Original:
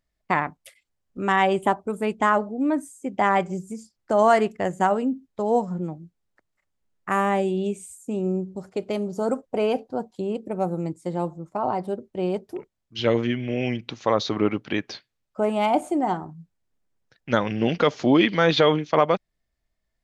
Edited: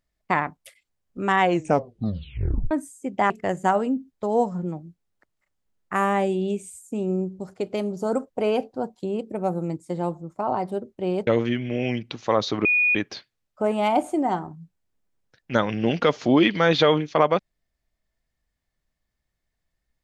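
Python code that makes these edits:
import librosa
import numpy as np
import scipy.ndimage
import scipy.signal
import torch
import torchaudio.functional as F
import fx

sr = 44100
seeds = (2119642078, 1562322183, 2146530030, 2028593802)

y = fx.edit(x, sr, fx.tape_stop(start_s=1.4, length_s=1.31),
    fx.cut(start_s=3.3, length_s=1.16),
    fx.cut(start_s=12.43, length_s=0.62),
    fx.bleep(start_s=14.43, length_s=0.3, hz=2460.0, db=-16.5), tone=tone)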